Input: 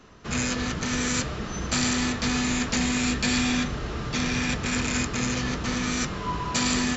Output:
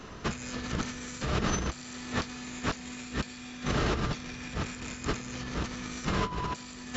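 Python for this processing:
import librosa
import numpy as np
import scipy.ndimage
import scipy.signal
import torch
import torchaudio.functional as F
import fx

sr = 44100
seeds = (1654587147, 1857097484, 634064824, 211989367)

y = fx.low_shelf(x, sr, hz=91.0, db=-7.0, at=(1.8, 3.93))
y = fx.over_compress(y, sr, threshold_db=-33.0, ratio=-0.5)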